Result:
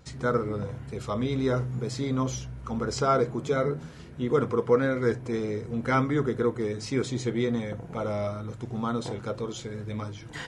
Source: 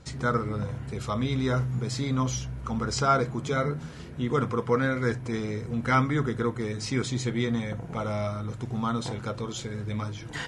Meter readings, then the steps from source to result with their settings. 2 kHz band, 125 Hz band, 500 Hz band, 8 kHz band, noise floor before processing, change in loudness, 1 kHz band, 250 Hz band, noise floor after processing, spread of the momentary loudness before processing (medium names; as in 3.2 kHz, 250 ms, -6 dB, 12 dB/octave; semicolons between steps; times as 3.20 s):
-2.5 dB, -2.5 dB, +3.5 dB, -3.5 dB, -40 dBFS, 0.0 dB, -2.0 dB, 0.0 dB, -43 dBFS, 9 LU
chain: dynamic bell 430 Hz, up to +8 dB, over -41 dBFS, Q 0.99; wow and flutter 22 cents; trim -3.5 dB